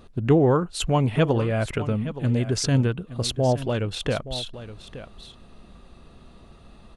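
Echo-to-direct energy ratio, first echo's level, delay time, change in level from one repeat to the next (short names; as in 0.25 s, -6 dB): -14.0 dB, -14.0 dB, 0.87 s, no steady repeat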